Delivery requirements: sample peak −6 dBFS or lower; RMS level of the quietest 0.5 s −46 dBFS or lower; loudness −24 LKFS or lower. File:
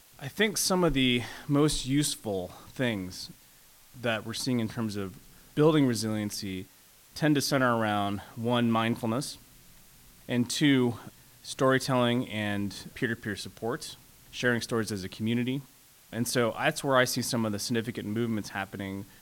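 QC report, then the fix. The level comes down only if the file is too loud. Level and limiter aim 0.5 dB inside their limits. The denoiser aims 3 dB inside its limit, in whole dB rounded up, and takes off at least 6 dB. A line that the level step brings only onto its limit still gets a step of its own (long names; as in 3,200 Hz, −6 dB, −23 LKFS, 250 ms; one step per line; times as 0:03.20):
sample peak −9.5 dBFS: in spec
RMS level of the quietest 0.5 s −57 dBFS: in spec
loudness −28.5 LKFS: in spec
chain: no processing needed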